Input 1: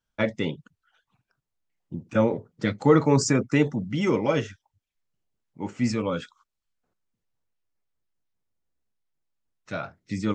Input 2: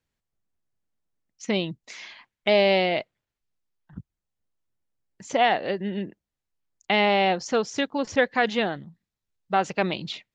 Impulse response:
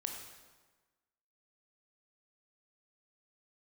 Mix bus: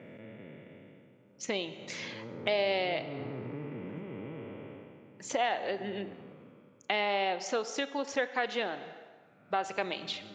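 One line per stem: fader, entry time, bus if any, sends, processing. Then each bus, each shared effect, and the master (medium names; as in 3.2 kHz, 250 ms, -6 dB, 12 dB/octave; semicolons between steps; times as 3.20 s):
-10.0 dB, 0.00 s, send -7 dB, spectral blur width 1030 ms; elliptic band-pass 110–2800 Hz; auto duck -7 dB, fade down 0.45 s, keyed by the second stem
-2.5 dB, 0.00 s, send -6 dB, high-pass 340 Hz 12 dB/octave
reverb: on, RT60 1.3 s, pre-delay 18 ms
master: compression 2:1, threshold -34 dBFS, peak gain reduction 10 dB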